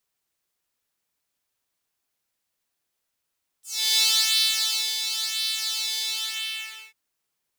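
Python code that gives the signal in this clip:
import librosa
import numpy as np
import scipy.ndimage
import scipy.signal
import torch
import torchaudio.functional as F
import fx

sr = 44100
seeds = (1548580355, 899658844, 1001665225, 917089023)

y = fx.sub_patch_pwm(sr, seeds[0], note=69, wave2='saw', interval_st=-12, detune_cents=10, level2_db=-9.0, sub_db=-15.0, noise_db=-15.5, kind='highpass', cutoff_hz=2300.0, q=2.9, env_oct=2.0, env_decay_s=0.16, env_sustain_pct=40, attack_ms=342.0, decay_s=0.98, sustain_db=-8.0, release_s=0.91, note_s=2.39, lfo_hz=0.96, width_pct=19, width_swing_pct=13)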